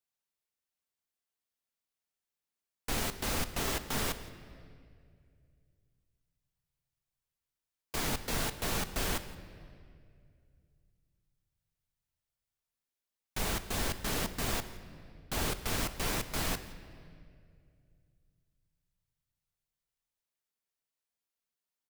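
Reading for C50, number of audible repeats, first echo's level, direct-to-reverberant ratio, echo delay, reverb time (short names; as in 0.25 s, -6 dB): 12.0 dB, 1, -21.5 dB, 10.0 dB, 0.169 s, 2.3 s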